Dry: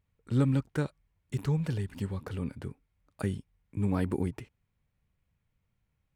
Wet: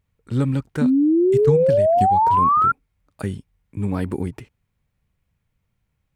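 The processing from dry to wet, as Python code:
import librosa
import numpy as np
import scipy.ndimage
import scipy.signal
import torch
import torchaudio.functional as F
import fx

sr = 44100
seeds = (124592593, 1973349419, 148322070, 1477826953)

y = fx.transient(x, sr, attack_db=7, sustain_db=-9, at=(1.34, 2.65))
y = fx.spec_paint(y, sr, seeds[0], shape='rise', start_s=0.81, length_s=1.91, low_hz=240.0, high_hz=1400.0, level_db=-21.0)
y = F.gain(torch.from_numpy(y), 5.0).numpy()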